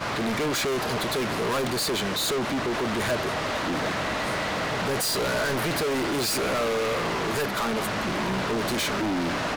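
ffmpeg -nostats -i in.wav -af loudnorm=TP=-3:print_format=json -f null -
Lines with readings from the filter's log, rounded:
"input_i" : "-26.0",
"input_tp" : "-19.0",
"input_lra" : "0.9",
"input_thresh" : "-36.0",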